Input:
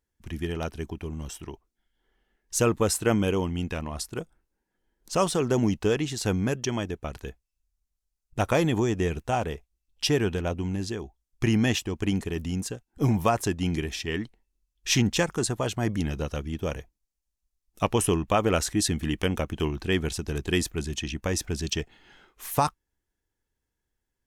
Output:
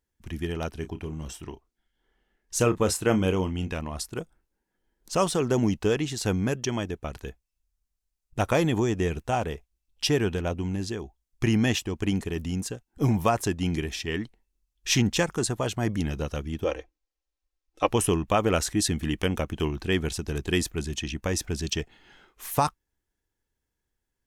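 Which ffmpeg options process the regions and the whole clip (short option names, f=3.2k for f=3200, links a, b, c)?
-filter_complex "[0:a]asettb=1/sr,asplit=3[a][b][c];[a]atrim=end=0.754[d];[b]atrim=start=0.75:end=3.72,asetpts=PTS-STARTPTS,afade=t=in:d=0.004:c=qsin,afade=t=out:st=2.966:d=0.004:c=qsin,highshelf=f=10k:g=-5,asplit=2[e][f];[f]adelay=32,volume=-11dB[g];[e][g]amix=inputs=2:normalize=0,atrim=end_sample=130977[h];[c]atrim=start=3.716[i];[d][h]acrossfade=d=0.004:c1=hsin:c2=qsin[j];[j][i]acrossfade=d=0.004:c1=qsin:c2=hsin,asettb=1/sr,asplit=3[k][l][m];[k]atrim=end=16.644[n];[l]atrim=start=16.64:end=17.88,asetpts=PTS-STARTPTS,afade=t=in:d=0.004:c=qsin,afade=t=out:st=1.236:d=0.004:c=qsin,lowpass=5k,lowshelf=f=280:t=q:w=3:g=-7,aecho=1:1:3.8:0.6,atrim=end_sample=54684[o];[m]atrim=start=17.876[p];[n][o]acrossfade=d=0.004:c1=hsin:c2=qsin[q];[q][p]acrossfade=d=0.004:c1=qsin:c2=hsin"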